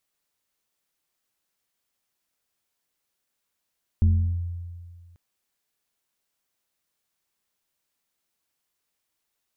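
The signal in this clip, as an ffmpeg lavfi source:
-f lavfi -i "aevalsrc='0.211*pow(10,-3*t/1.88)*sin(2*PI*86.6*t+0.5*clip(1-t/0.39,0,1)*sin(2*PI*1.48*86.6*t))':d=1.14:s=44100"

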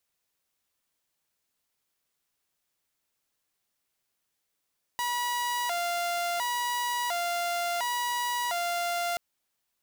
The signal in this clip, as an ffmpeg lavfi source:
-f lavfi -i "aevalsrc='0.0562*(2*mod((832*t+137/0.71*(0.5-abs(mod(0.71*t,1)-0.5))),1)-1)':d=4.18:s=44100"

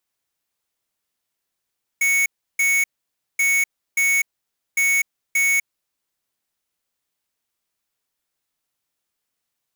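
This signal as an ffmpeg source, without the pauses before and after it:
-f lavfi -i "aevalsrc='0.126*(2*lt(mod(2220*t,1),0.5)-1)*clip(min(mod(mod(t,1.38),0.58),0.25-mod(mod(t,1.38),0.58))/0.005,0,1)*lt(mod(t,1.38),1.16)':d=4.14:s=44100"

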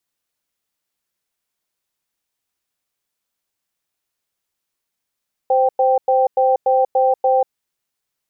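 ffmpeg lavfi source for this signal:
-f lavfi -i "aevalsrc='0.188*(sin(2*PI*520*t)+sin(2*PI*783*t))*clip(min(mod(t,0.29),0.19-mod(t,0.29))/0.005,0,1)':d=1.97:s=44100"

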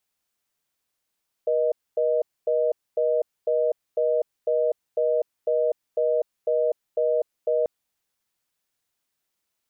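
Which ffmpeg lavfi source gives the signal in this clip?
-f lavfi -i "aevalsrc='0.0794*(sin(2*PI*480*t)+sin(2*PI*620*t))*clip(min(mod(t,0.5),0.25-mod(t,0.5))/0.005,0,1)':d=6.19:s=44100"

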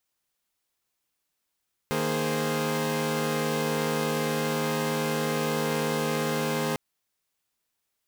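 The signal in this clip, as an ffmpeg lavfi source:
-f lavfi -i "aevalsrc='0.0376*((2*mod(155.56*t,1)-1)+(2*mod(233.08*t,1)-1)+(2*mod(415.3*t,1)-1)+(2*mod(523.25*t,1)-1))':d=4.85:s=44100"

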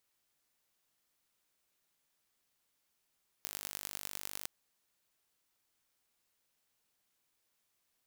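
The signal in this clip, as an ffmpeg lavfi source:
-f lavfi -i "aevalsrc='0.299*eq(mod(n,886),0)*(0.5+0.5*eq(mod(n,4430),0))':d=1.01:s=44100"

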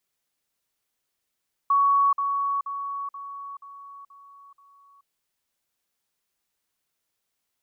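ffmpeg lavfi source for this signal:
-f lavfi -i "aevalsrc='pow(10,(-16.5-6*floor(t/0.48))/20)*sin(2*PI*1120*t)*clip(min(mod(t,0.48),0.43-mod(t,0.48))/0.005,0,1)':d=3.36:s=44100"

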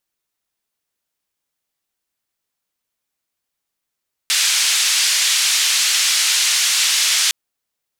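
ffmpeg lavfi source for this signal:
-f lavfi -i "anoisesrc=c=white:d=3.01:r=44100:seed=1,highpass=f=2300,lowpass=f=6800,volume=-4.9dB"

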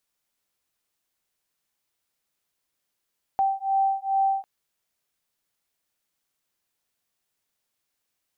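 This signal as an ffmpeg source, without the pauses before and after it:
-f lavfi -i "aevalsrc='0.0631*(sin(2*PI*778*t)+sin(2*PI*780.4*t))':d=1.05:s=44100"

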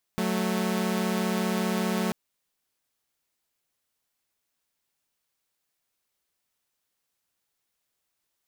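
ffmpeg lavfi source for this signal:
-f lavfi -i "aevalsrc='0.0562*((2*mod(185*t,1)-1)+(2*mod(220*t,1)-1))':d=1.94:s=44100"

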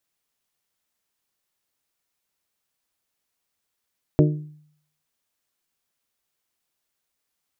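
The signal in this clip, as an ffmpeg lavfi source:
-f lavfi -i "aevalsrc='0.251*pow(10,-3*t/0.64)*sin(2*PI*151*t)+0.188*pow(10,-3*t/0.394)*sin(2*PI*302*t)+0.141*pow(10,-3*t/0.347)*sin(2*PI*362.4*t)+0.106*pow(10,-3*t/0.297)*sin(2*PI*453*t)+0.0794*pow(10,-3*t/0.243)*sin(2*PI*604*t)':d=0.89:s=44100"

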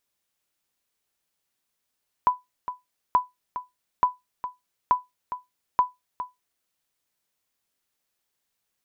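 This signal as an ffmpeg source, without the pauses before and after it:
-f lavfi -i "aevalsrc='0.299*(sin(2*PI*996*mod(t,0.88))*exp(-6.91*mod(t,0.88)/0.18)+0.251*sin(2*PI*996*max(mod(t,0.88)-0.41,0))*exp(-6.91*max(mod(t,0.88)-0.41,0)/0.18))':d=4.4:s=44100"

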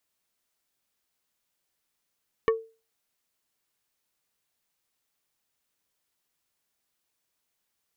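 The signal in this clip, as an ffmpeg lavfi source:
-f lavfi -i "aevalsrc='0.158*pow(10,-3*t/0.32)*sin(2*PI*449*t)+0.0891*pow(10,-3*t/0.107)*sin(2*PI*1122.5*t)+0.0501*pow(10,-3*t/0.061)*sin(2*PI*1796*t)+0.0282*pow(10,-3*t/0.046)*sin(2*PI*2245*t)+0.0158*pow(10,-3*t/0.034)*sin(2*PI*2918.5*t)':d=0.45:s=44100"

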